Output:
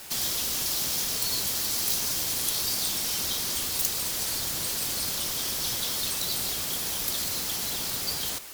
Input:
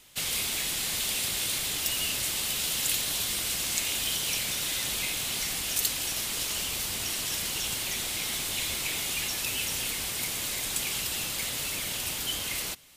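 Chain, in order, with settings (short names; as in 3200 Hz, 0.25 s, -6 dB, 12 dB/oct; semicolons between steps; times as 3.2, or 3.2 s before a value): added noise white -43 dBFS; wide varispeed 1.52×; gain +2 dB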